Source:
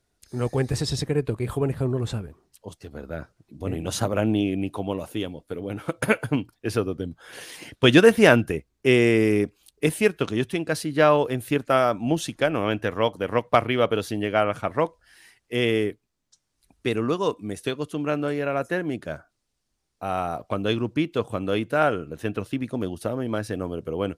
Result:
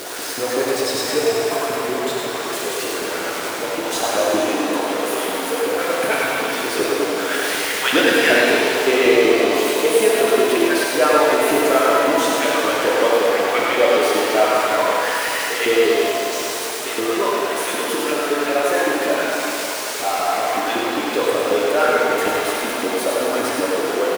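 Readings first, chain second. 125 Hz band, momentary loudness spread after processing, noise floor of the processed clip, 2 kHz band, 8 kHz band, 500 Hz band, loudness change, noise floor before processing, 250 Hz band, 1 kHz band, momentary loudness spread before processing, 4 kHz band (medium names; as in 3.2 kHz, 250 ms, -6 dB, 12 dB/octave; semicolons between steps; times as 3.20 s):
-13.5 dB, 8 LU, -25 dBFS, +9.0 dB, +14.5 dB, +7.0 dB, +6.0 dB, -76 dBFS, +1.5 dB, +9.0 dB, 14 LU, +10.0 dB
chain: jump at every zero crossing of -20.5 dBFS; LFO high-pass saw up 5.3 Hz 280–2400 Hz; on a send: delay 103 ms -5 dB; on the sum: pitch-shifted reverb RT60 3.1 s, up +7 st, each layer -8 dB, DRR -3.5 dB; trim -5 dB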